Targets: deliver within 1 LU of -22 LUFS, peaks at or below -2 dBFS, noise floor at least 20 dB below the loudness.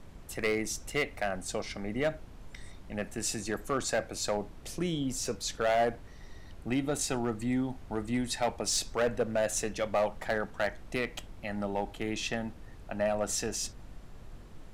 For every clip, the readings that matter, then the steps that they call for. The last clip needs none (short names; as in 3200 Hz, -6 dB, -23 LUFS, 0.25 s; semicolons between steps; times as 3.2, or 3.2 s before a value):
clipped 0.9%; flat tops at -22.0 dBFS; noise floor -49 dBFS; noise floor target -53 dBFS; loudness -32.5 LUFS; peak -22.0 dBFS; loudness target -22.0 LUFS
-> clip repair -22 dBFS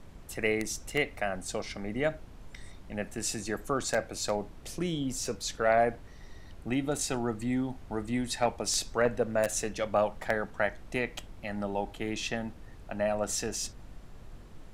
clipped 0.0%; noise floor -49 dBFS; noise floor target -52 dBFS
-> noise print and reduce 6 dB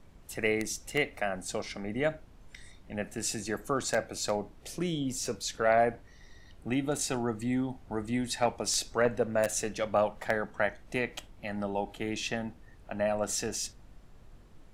noise floor -55 dBFS; loudness -32.0 LUFS; peak -13.0 dBFS; loudness target -22.0 LUFS
-> gain +10 dB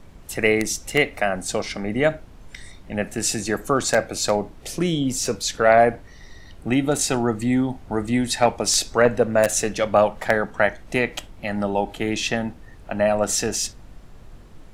loudness -22.0 LUFS; peak -3.0 dBFS; noise floor -45 dBFS